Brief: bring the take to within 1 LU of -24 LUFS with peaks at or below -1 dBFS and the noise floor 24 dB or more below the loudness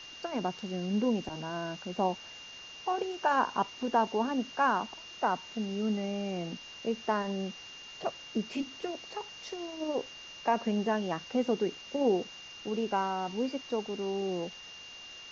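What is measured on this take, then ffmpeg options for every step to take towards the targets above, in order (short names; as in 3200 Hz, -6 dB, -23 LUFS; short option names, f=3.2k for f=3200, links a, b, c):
steady tone 2800 Hz; tone level -46 dBFS; noise floor -48 dBFS; noise floor target -57 dBFS; loudness -33.0 LUFS; peak -15.5 dBFS; loudness target -24.0 LUFS
-> -af "bandreject=f=2.8k:w=30"
-af "afftdn=nr=9:nf=-48"
-af "volume=9dB"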